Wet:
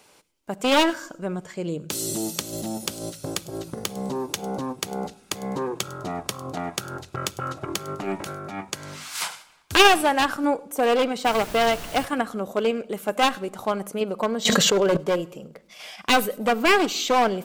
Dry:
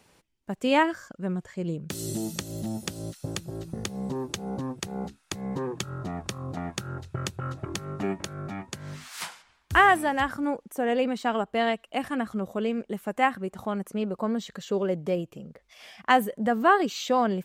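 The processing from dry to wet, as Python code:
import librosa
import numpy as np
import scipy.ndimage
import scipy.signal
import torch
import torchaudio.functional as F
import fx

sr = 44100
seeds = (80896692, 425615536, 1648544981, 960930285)

p1 = np.minimum(x, 2.0 * 10.0 ** (-22.0 / 20.0) - x)
p2 = fx.bass_treble(p1, sr, bass_db=-11, treble_db=2)
p3 = fx.notch(p2, sr, hz=1800.0, q=12.0)
p4 = fx.level_steps(p3, sr, step_db=10)
p5 = p3 + F.gain(torch.from_numpy(p4), -0.5).numpy()
p6 = fx.transient(p5, sr, attack_db=-12, sustain_db=5, at=(8.0, 8.57), fade=0.02)
p7 = fx.dmg_noise_colour(p6, sr, seeds[0], colour='pink', level_db=-40.0, at=(11.24, 12.04), fade=0.02)
p8 = p7 + fx.echo_wet_highpass(p7, sr, ms=102, feedback_pct=30, hz=5100.0, wet_db=-17.0, dry=0)
p9 = fx.room_shoebox(p8, sr, seeds[1], volume_m3=2000.0, walls='furnished', distance_m=0.42)
p10 = fx.env_flatten(p9, sr, amount_pct=100, at=(14.45, 14.97))
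y = F.gain(torch.from_numpy(p10), 3.0).numpy()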